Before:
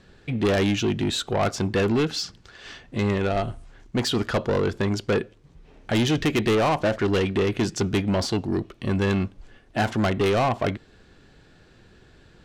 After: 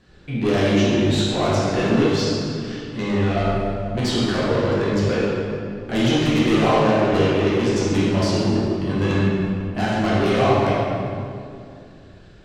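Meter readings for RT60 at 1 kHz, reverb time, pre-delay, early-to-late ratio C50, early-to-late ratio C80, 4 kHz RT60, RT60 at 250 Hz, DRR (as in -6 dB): 2.3 s, 2.4 s, 9 ms, -3.0 dB, -1.5 dB, 1.6 s, 2.9 s, -8.0 dB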